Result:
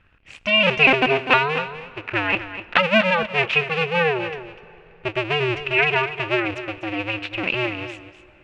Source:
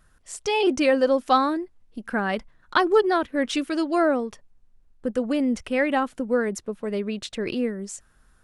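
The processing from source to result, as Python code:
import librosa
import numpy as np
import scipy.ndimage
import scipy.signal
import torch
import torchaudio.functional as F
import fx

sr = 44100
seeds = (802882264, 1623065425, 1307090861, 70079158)

y = fx.cycle_switch(x, sr, every=2, mode='inverted')
y = fx.lowpass_res(y, sr, hz=2600.0, q=7.9)
y = y + 10.0 ** (-12.0 / 20.0) * np.pad(y, (int(248 * sr / 1000.0), 0))[:len(y)]
y = fx.rev_plate(y, sr, seeds[0], rt60_s=4.1, hf_ratio=0.7, predelay_ms=0, drr_db=19.0)
y = y * 10.0 ** (-1.0 / 20.0)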